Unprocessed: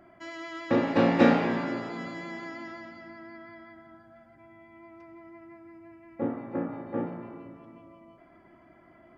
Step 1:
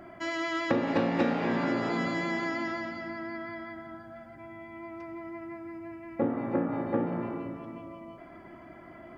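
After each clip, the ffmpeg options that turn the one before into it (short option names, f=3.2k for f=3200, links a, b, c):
-af "acompressor=threshold=-32dB:ratio=8,volume=8dB"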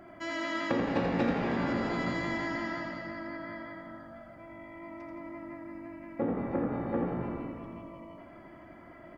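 -filter_complex "[0:a]asplit=7[a][b][c][d][e][f][g];[b]adelay=84,afreqshift=-49,volume=-5dB[h];[c]adelay=168,afreqshift=-98,volume=-11.7dB[i];[d]adelay=252,afreqshift=-147,volume=-18.5dB[j];[e]adelay=336,afreqshift=-196,volume=-25.2dB[k];[f]adelay=420,afreqshift=-245,volume=-32dB[l];[g]adelay=504,afreqshift=-294,volume=-38.7dB[m];[a][h][i][j][k][l][m]amix=inputs=7:normalize=0,volume=-3.5dB"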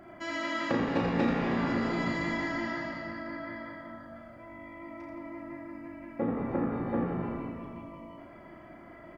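-filter_complex "[0:a]asplit=2[a][b];[b]adelay=35,volume=-5dB[c];[a][c]amix=inputs=2:normalize=0"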